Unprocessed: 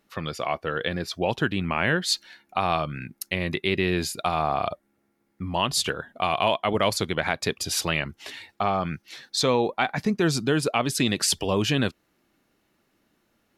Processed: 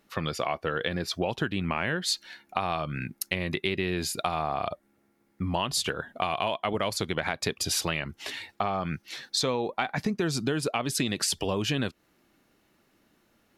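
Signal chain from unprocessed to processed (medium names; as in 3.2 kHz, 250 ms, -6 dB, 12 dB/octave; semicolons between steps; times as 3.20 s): compression, threshold -27 dBFS, peak gain reduction 10 dB; trim +2.5 dB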